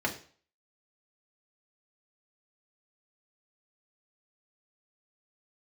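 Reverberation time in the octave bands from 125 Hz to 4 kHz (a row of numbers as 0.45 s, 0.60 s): 0.45 s, 0.40 s, 0.45 s, 0.45 s, 0.45 s, 0.45 s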